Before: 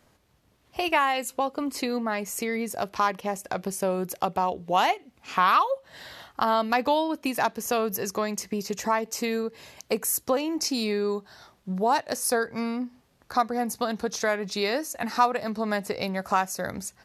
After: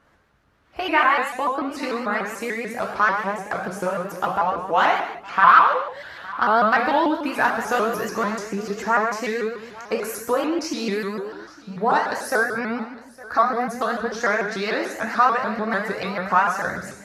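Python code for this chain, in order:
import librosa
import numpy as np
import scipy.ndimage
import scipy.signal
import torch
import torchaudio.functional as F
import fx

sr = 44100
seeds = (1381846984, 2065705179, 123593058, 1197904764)

y = fx.law_mismatch(x, sr, coded='mu', at=(6.56, 8.29))
y = fx.lowpass(y, sr, hz=2900.0, slope=6)
y = fx.peak_eq(y, sr, hz=1500.0, db=9.5, octaves=0.8)
y = y + 10.0 ** (-20.0 / 20.0) * np.pad(y, (int(861 * sr / 1000.0), 0))[:len(y)]
y = fx.rev_gated(y, sr, seeds[0], gate_ms=310, shape='falling', drr_db=-1.0)
y = fx.vibrato_shape(y, sr, shape='saw_up', rate_hz=6.8, depth_cents=160.0)
y = y * librosa.db_to_amplitude(-1.0)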